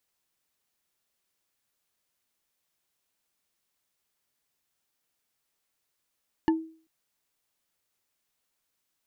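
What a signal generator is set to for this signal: wood hit bar, length 0.39 s, lowest mode 322 Hz, decay 0.43 s, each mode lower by 6 dB, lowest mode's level -17 dB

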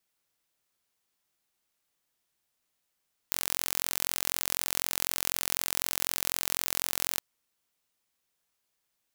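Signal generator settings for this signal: pulse train 44/s, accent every 0, -2 dBFS 3.87 s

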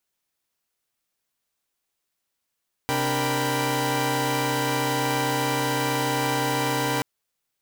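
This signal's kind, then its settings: chord C3/D4/A#4/G5/B5 saw, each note -26.5 dBFS 4.13 s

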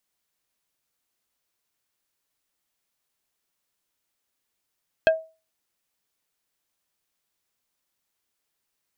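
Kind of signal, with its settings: wood hit plate, lowest mode 643 Hz, decay 0.31 s, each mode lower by 5 dB, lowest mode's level -11 dB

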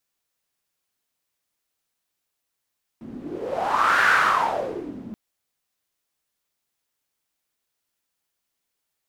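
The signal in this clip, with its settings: wind-like swept noise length 2.13 s, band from 230 Hz, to 1500 Hz, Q 5.8, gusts 1, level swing 19.5 dB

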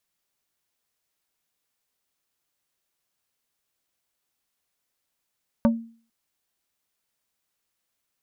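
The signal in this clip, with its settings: wood hit plate, lowest mode 229 Hz, decay 0.43 s, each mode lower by 5 dB, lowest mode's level -13 dB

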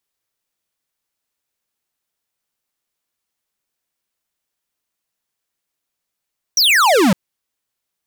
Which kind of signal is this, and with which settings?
laser zap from 6100 Hz, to 170 Hz, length 0.56 s square, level -12 dB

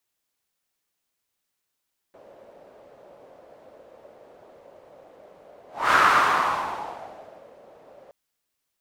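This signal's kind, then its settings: whoosh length 5.97 s, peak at 3.79, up 0.27 s, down 1.74 s, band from 570 Hz, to 1300 Hz, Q 3.9, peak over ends 33 dB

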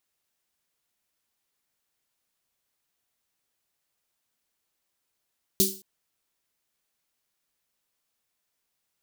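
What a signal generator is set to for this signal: snare drum length 0.22 s, tones 200 Hz, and 380 Hz, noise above 3900 Hz, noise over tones 4.5 dB, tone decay 0.34 s, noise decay 0.36 s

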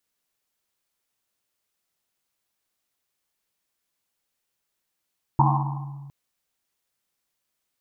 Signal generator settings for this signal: Risset drum length 0.71 s, pitch 140 Hz, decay 2.03 s, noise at 920 Hz, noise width 320 Hz, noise 40%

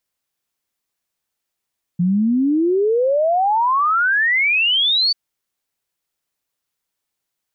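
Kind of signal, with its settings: log sweep 170 Hz -> 4600 Hz 3.14 s -13.5 dBFS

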